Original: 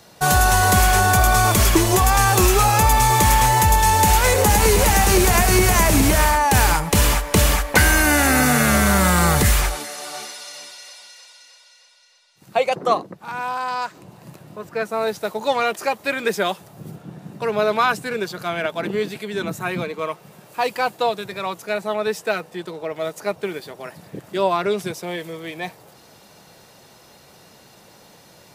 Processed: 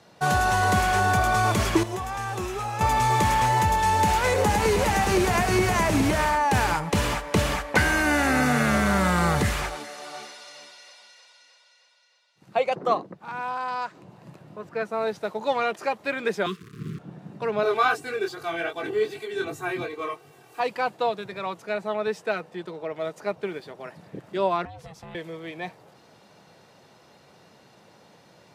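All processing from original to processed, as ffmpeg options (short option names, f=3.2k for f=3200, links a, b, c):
-filter_complex "[0:a]asettb=1/sr,asplit=3[a][b][c];[a]atrim=end=1.834[d];[b]atrim=start=1.83:end=2.81,asetpts=PTS-STARTPTS,afade=t=in:d=0.004:c=qsin,afade=t=out:st=0.976:d=0.004:c=qsin,agate=range=-9dB:threshold=-7dB:ratio=16:release=100:detection=peak,bandreject=f=4.5k:w=15[e];[c]atrim=start=2.806[f];[d][e]acrossfade=d=0.004:c1=hsin:c2=qsin[g];[g][f]acrossfade=d=0.004:c1=qsin:c2=hsin,asettb=1/sr,asplit=3[h][i][j];[h]atrim=end=16.464[k];[i]atrim=start=16.46:end=16.99,asetpts=PTS-STARTPTS,afade=t=in:d=0.004:c=qsin,afade=t=out:st=0.526:d=0.004:c=qsin,lowshelf=f=420:g=8,acrusher=bits=7:dc=4:mix=0:aa=0.000001,asuperstop=centerf=700:order=20:qfactor=1.2[l];[j]atrim=start=16.986[m];[k][l]acrossfade=d=0.004:c1=hsin:c2=qsin[n];[n][m]acrossfade=d=0.004:c1=qsin:c2=hsin,asettb=1/sr,asplit=3[o][p][q];[o]atrim=end=17.634[r];[p]atrim=start=17.63:end=20.6,asetpts=PTS-STARTPTS,afade=t=in:d=0.004:c=qsin,afade=t=out:st=2.966:d=0.004:c=qsin,highshelf=f=7.3k:g=11.5,flanger=delay=20:depth=4.1:speed=2.6,aecho=1:1:2.6:0.98,atrim=end_sample=130977[s];[q]atrim=start=20.596[t];[r][s]acrossfade=d=0.004:c1=hsin:c2=qsin[u];[u][t]acrossfade=d=0.004:c1=qsin:c2=hsin,asettb=1/sr,asplit=3[v][w][x];[v]atrim=end=24.654[y];[w]atrim=start=24.65:end=25.15,asetpts=PTS-STARTPTS,afade=t=in:d=0.004:c=qsin,afade=t=out:st=0.496:d=0.004:c=qsin,aeval=exprs='val(0)*sin(2*PI*320*n/s)':c=same,acompressor=threshold=-33dB:ratio=6:attack=3.2:release=140:knee=1:detection=peak,asubboost=boost=11:cutoff=220[z];[x]atrim=start=25.146[aa];[y][z]acrossfade=d=0.004:c1=hsin:c2=qsin[ab];[ab][aa]acrossfade=d=0.004:c1=qsin:c2=hsin,highpass=88,aemphasis=mode=reproduction:type=50fm,volume=-4.5dB"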